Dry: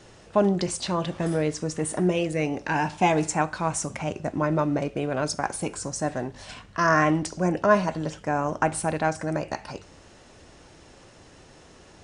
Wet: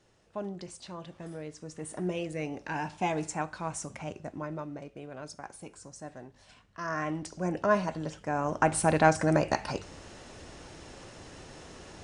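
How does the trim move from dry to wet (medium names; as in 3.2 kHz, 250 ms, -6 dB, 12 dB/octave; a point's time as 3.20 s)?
1.50 s -16 dB
2.12 s -9 dB
4.10 s -9 dB
4.75 s -16 dB
6.70 s -16 dB
7.59 s -6 dB
8.28 s -6 dB
9.00 s +3 dB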